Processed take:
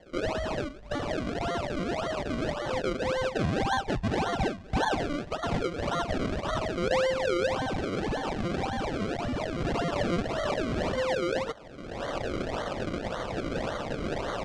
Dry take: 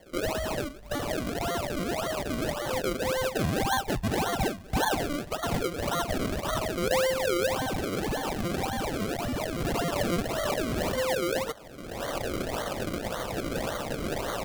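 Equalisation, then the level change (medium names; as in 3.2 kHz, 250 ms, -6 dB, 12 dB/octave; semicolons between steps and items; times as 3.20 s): low-pass 10 kHz 12 dB/octave; distance through air 77 m; treble shelf 7.6 kHz -4 dB; 0.0 dB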